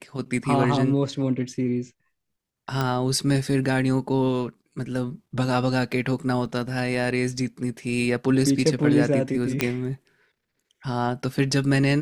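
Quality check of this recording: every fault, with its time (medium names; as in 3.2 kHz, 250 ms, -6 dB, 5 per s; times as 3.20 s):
2.81 s: pop -12 dBFS
6.46 s: dropout 2.5 ms
9.61 s: pop -6 dBFS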